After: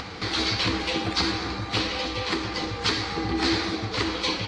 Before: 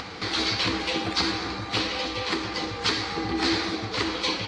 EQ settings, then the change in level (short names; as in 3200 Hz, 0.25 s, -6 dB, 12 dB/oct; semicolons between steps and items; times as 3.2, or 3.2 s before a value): low shelf 120 Hz +7 dB; 0.0 dB